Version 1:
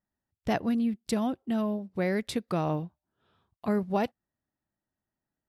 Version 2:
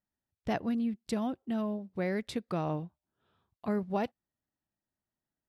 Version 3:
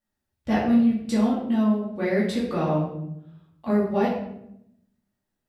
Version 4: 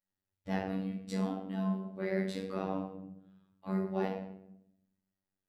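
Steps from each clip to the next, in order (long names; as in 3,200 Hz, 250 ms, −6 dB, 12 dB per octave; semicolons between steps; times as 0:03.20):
high-shelf EQ 7,600 Hz −7 dB; level −4 dB
rectangular room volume 180 cubic metres, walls mixed, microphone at 2.4 metres
phases set to zero 95.5 Hz; level −8.5 dB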